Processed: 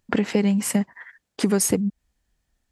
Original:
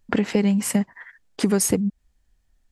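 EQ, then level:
high-pass filter 80 Hz 6 dB per octave
0.0 dB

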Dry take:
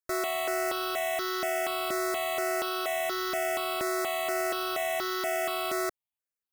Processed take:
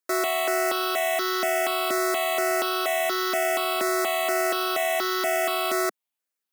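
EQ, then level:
Chebyshev high-pass filter 210 Hz, order 3
+6.0 dB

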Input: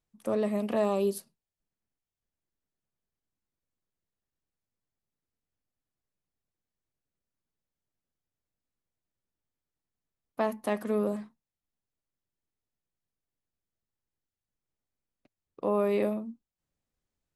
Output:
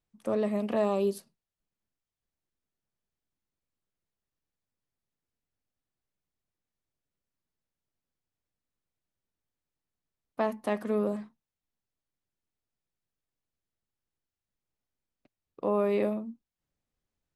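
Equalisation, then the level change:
high-shelf EQ 10,000 Hz −11.5 dB
0.0 dB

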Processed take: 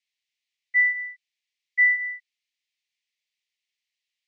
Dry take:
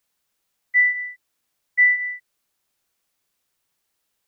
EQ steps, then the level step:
Butterworth high-pass 1,900 Hz 72 dB per octave
high-frequency loss of the air 150 metres
0.0 dB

